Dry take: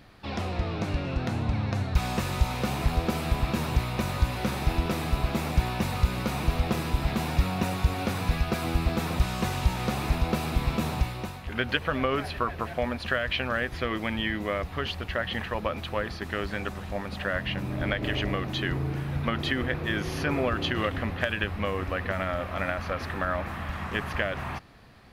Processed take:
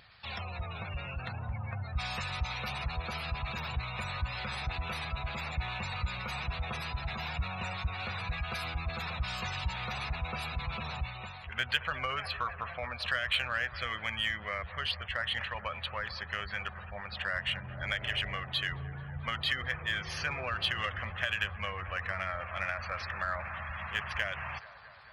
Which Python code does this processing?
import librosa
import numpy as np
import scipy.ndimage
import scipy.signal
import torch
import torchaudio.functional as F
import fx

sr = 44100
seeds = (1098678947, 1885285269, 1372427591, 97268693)

p1 = fx.spec_gate(x, sr, threshold_db=-25, keep='strong')
p2 = scipy.signal.sosfilt(scipy.signal.butter(2, 77.0, 'highpass', fs=sr, output='sos'), p1)
p3 = fx.tone_stack(p2, sr, knobs='10-0-10')
p4 = 10.0 ** (-32.5 / 20.0) * np.tanh(p3 / 10.0 ** (-32.5 / 20.0))
p5 = p3 + (p4 * 10.0 ** (-3.0 / 20.0))
p6 = fx.vibrato(p5, sr, rate_hz=1.9, depth_cents=10.0)
y = p6 + fx.echo_wet_bandpass(p6, sr, ms=219, feedback_pct=73, hz=820.0, wet_db=-14.5, dry=0)